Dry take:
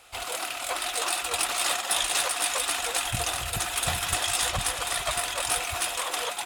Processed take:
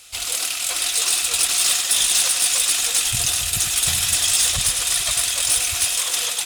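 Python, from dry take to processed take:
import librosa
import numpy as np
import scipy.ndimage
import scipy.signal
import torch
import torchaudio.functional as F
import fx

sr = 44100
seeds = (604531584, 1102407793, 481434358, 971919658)

p1 = fx.curve_eq(x, sr, hz=(160.0, 840.0, 5800.0, 16000.0), db=(0, -10, 11, 7))
p2 = 10.0 ** (-15.5 / 20.0) * np.tanh(p1 / 10.0 ** (-15.5 / 20.0))
p3 = p2 + fx.echo_single(p2, sr, ms=103, db=-7.5, dry=0)
y = p3 * librosa.db_to_amplitude(3.5)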